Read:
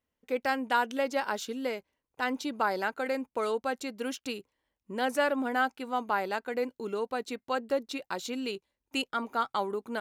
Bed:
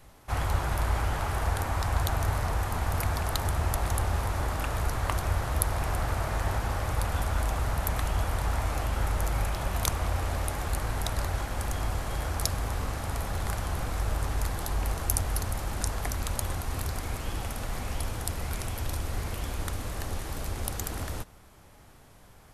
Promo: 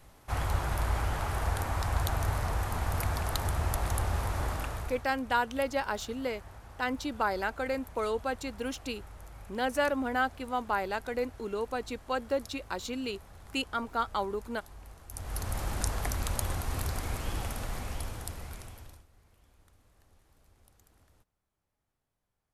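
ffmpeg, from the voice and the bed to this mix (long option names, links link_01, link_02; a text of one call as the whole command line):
ffmpeg -i stem1.wav -i stem2.wav -filter_complex "[0:a]adelay=4600,volume=-1dB[link_01];[1:a]volume=16.5dB,afade=type=out:start_time=4.5:duration=0.57:silence=0.133352,afade=type=in:start_time=15.1:duration=0.51:silence=0.112202,afade=type=out:start_time=17.41:duration=1.65:silence=0.0334965[link_02];[link_01][link_02]amix=inputs=2:normalize=0" out.wav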